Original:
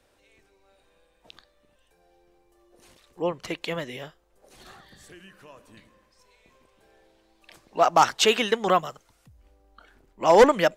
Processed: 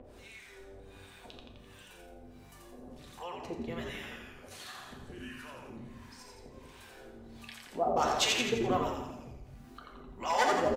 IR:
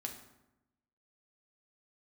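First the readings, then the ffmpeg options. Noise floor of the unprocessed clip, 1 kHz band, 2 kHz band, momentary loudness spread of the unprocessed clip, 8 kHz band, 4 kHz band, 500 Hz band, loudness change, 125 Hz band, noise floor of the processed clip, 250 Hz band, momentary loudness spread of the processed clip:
−66 dBFS, −9.0 dB, −6.5 dB, 21 LU, −5.0 dB, −6.0 dB, −11.5 dB, −10.5 dB, −3.5 dB, −54 dBFS, −6.5 dB, 24 LU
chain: -filter_complex "[0:a]acrossover=split=800[link_01][link_02];[link_01]aeval=exprs='val(0)*(1-1/2+1/2*cos(2*PI*1.4*n/s))':channel_layout=same[link_03];[link_02]aeval=exprs='val(0)*(1-1/2-1/2*cos(2*PI*1.4*n/s))':channel_layout=same[link_04];[link_03][link_04]amix=inputs=2:normalize=0,asplit=8[link_05][link_06][link_07][link_08][link_09][link_10][link_11][link_12];[link_06]adelay=85,afreqshift=-100,volume=-3.5dB[link_13];[link_07]adelay=170,afreqshift=-200,volume=-9.3dB[link_14];[link_08]adelay=255,afreqshift=-300,volume=-15.2dB[link_15];[link_09]adelay=340,afreqshift=-400,volume=-21dB[link_16];[link_10]adelay=425,afreqshift=-500,volume=-26.9dB[link_17];[link_11]adelay=510,afreqshift=-600,volume=-32.7dB[link_18];[link_12]adelay=595,afreqshift=-700,volume=-38.6dB[link_19];[link_05][link_13][link_14][link_15][link_16][link_17][link_18][link_19]amix=inputs=8:normalize=0,acompressor=mode=upward:threshold=-30dB:ratio=2.5[link_20];[1:a]atrim=start_sample=2205[link_21];[link_20][link_21]afir=irnorm=-1:irlink=0,volume=-4dB"

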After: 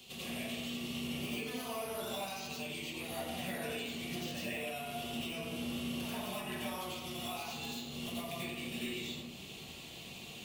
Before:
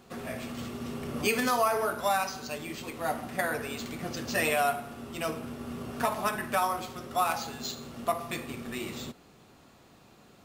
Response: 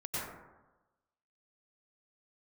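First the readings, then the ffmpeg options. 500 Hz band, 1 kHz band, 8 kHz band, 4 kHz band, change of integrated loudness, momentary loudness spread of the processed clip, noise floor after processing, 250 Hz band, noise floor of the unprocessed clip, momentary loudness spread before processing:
−10.0 dB, −14.5 dB, −7.0 dB, −0.5 dB, −8.5 dB, 4 LU, −49 dBFS, −3.5 dB, −57 dBFS, 12 LU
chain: -filter_complex "[0:a]acrossover=split=140|1900[link_01][link_02][link_03];[link_01]acompressor=threshold=-50dB:ratio=4[link_04];[link_02]acompressor=threshold=-31dB:ratio=4[link_05];[link_03]acompressor=threshold=-46dB:ratio=4[link_06];[link_04][link_05][link_06]amix=inputs=3:normalize=0,acrossover=split=330|1500|2800[link_07][link_08][link_09][link_10];[link_10]aeval=exprs='(mod(84.1*val(0)+1,2)-1)/84.1':channel_layout=same[link_11];[link_07][link_08][link_09][link_11]amix=inputs=4:normalize=0,highshelf=frequency=2100:width_type=q:width=3:gain=12,bandreject=frequency=68.22:width_type=h:width=4,bandreject=frequency=136.44:width_type=h:width=4,bandreject=frequency=204.66:width_type=h:width=4,bandreject=frequency=272.88:width_type=h:width=4,bandreject=frequency=341.1:width_type=h:width=4,bandreject=frequency=409.32:width_type=h:width=4,bandreject=frequency=477.54:width_type=h:width=4,bandreject=frequency=545.76:width_type=h:width=4,bandreject=frequency=613.98:width_type=h:width=4,bandreject=frequency=682.2:width_type=h:width=4,bandreject=frequency=750.42:width_type=h:width=4,bandreject=frequency=818.64:width_type=h:width=4,bandreject=frequency=886.86:width_type=h:width=4,bandreject=frequency=955.08:width_type=h:width=4,bandreject=frequency=1023.3:width_type=h:width=4,bandreject=frequency=1091.52:width_type=h:width=4,bandreject=frequency=1159.74:width_type=h:width=4,bandreject=frequency=1227.96:width_type=h:width=4,bandreject=frequency=1296.18:width_type=h:width=4,bandreject=frequency=1364.4:width_type=h:width=4,bandreject=frequency=1432.62:width_type=h:width=4,bandreject=frequency=1500.84:width_type=h:width=4,bandreject=frequency=1569.06:width_type=h:width=4,bandreject=frequency=1637.28:width_type=h:width=4,bandreject=frequency=1705.5:width_type=h:width=4,bandreject=frequency=1773.72:width_type=h:width=4,bandreject=frequency=1841.94:width_type=h:width=4,bandreject=frequency=1910.16:width_type=h:width=4,bandreject=frequency=1978.38:width_type=h:width=4,bandreject=frequency=2046.6:width_type=h:width=4,bandreject=frequency=2114.82:width_type=h:width=4,bandreject=frequency=2183.04:width_type=h:width=4,bandreject=frequency=2251.26:width_type=h:width=4,bandreject=frequency=2319.48:width_type=h:width=4,bandreject=frequency=2387.7:width_type=h:width=4,bandreject=frequency=2455.92:width_type=h:width=4,bandreject=frequency=2524.14:width_type=h:width=4,bandreject=frequency=2592.36:width_type=h:width=4,bandreject=frequency=2660.58:width_type=h:width=4,acompressor=threshold=-41dB:ratio=6,equalizer=frequency=5400:width_type=o:width=0.77:gain=-3[link_12];[1:a]atrim=start_sample=2205,asetrate=48510,aresample=44100[link_13];[link_12][link_13]afir=irnorm=-1:irlink=0,volume=1dB"

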